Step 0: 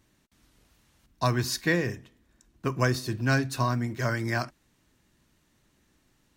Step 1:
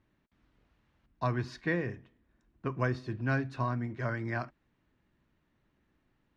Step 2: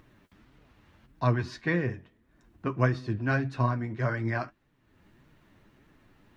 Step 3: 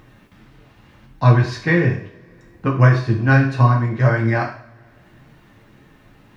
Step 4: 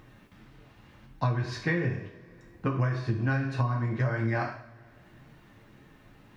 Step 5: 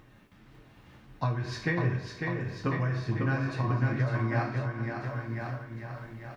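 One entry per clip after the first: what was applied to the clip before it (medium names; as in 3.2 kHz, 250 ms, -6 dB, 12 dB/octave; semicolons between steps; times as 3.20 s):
low-pass 2.4 kHz 12 dB/octave; trim -5.5 dB
upward compressor, threshold -53 dBFS; flange 1.7 Hz, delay 6.1 ms, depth 5.3 ms, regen +41%; trim +8 dB
two-slope reverb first 0.5 s, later 3.1 s, from -28 dB, DRR 0 dB; trim +8 dB
compression 12:1, threshold -18 dBFS, peak gain reduction 12 dB; trim -5.5 dB
on a send: bouncing-ball echo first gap 550 ms, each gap 0.9×, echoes 5; on the sum: random flutter of the level, depth 50%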